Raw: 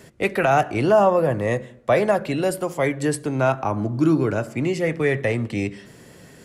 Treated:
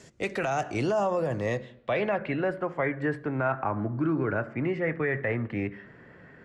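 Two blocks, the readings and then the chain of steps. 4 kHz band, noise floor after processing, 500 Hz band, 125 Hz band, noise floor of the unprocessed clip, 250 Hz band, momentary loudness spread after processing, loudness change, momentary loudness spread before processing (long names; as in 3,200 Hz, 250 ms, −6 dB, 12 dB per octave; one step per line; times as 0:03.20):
−9.0 dB, −53 dBFS, −8.5 dB, −7.0 dB, −48 dBFS, −7.5 dB, 5 LU, −7.5 dB, 7 LU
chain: brickwall limiter −13 dBFS, peak gain reduction 6.5 dB
low-pass filter sweep 6,700 Hz → 1,700 Hz, 0:01.30–0:02.43
level −6 dB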